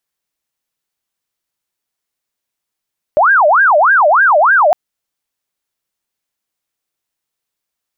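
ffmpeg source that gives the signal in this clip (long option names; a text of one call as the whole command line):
ffmpeg -f lavfi -i "aevalsrc='0.501*sin(2*PI*(1103*t-517/(2*PI*3.3)*sin(2*PI*3.3*t)))':duration=1.56:sample_rate=44100" out.wav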